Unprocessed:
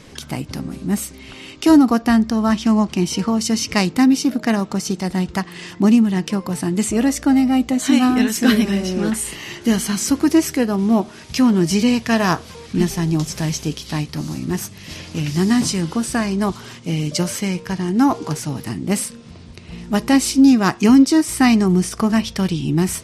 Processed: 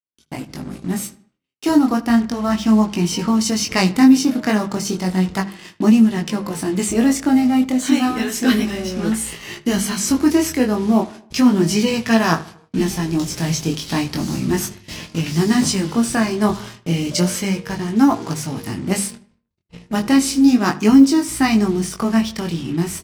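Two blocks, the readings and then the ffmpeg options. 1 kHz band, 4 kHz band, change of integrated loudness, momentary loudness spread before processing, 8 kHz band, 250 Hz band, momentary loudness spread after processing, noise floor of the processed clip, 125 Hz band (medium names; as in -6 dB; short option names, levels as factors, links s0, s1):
0.0 dB, +0.5 dB, 0.0 dB, 12 LU, +0.5 dB, 0.0 dB, 12 LU, -58 dBFS, -1.0 dB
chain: -filter_complex "[0:a]dynaudnorm=f=150:g=11:m=4.47,agate=range=0.00158:threshold=0.0355:ratio=16:detection=peak,flanger=delay=18:depth=5.9:speed=0.33,asplit=2[s0][s1];[s1]acrusher=bits=4:mix=0:aa=0.5,volume=0.708[s2];[s0][s2]amix=inputs=2:normalize=0,bandreject=f=50:t=h:w=6,bandreject=f=100:t=h:w=6,bandreject=f=150:t=h:w=6,bandreject=f=200:t=h:w=6,asplit=2[s3][s4];[s4]adelay=77,lowpass=f=3300:p=1,volume=0.126,asplit=2[s5][s6];[s6]adelay=77,lowpass=f=3300:p=1,volume=0.47,asplit=2[s7][s8];[s8]adelay=77,lowpass=f=3300:p=1,volume=0.47,asplit=2[s9][s10];[s10]adelay=77,lowpass=f=3300:p=1,volume=0.47[s11];[s5][s7][s9][s11]amix=inputs=4:normalize=0[s12];[s3][s12]amix=inputs=2:normalize=0,volume=0.562"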